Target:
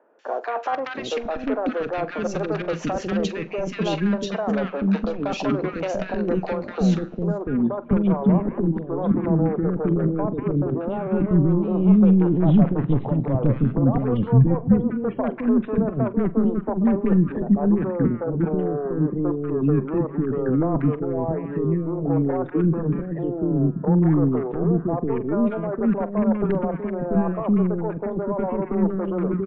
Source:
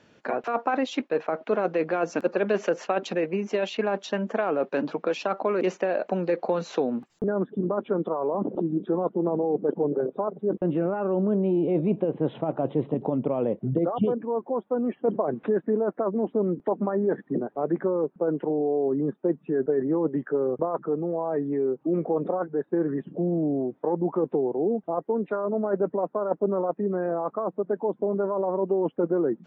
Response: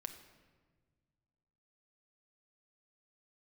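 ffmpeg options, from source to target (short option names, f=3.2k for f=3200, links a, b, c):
-filter_complex "[0:a]equalizer=f=2.9k:w=0.38:g=-3,aeval=exprs='0.266*(cos(1*acos(clip(val(0)/0.266,-1,1)))-cos(1*PI/2))+0.075*(cos(5*acos(clip(val(0)/0.266,-1,1)))-cos(5*PI/2))+0.0133*(cos(7*acos(clip(val(0)/0.266,-1,1)))-cos(7*PI/2))':c=same,asubboost=boost=4.5:cutoff=200,acrossover=split=390|1300[a][b][c];[c]adelay=190[d];[a]adelay=690[e];[e][b][d]amix=inputs=3:normalize=0,asplit=2[f][g];[1:a]atrim=start_sample=2205,adelay=43[h];[g][h]afir=irnorm=-1:irlink=0,volume=-12dB[i];[f][i]amix=inputs=2:normalize=0,aresample=16000,aresample=44100"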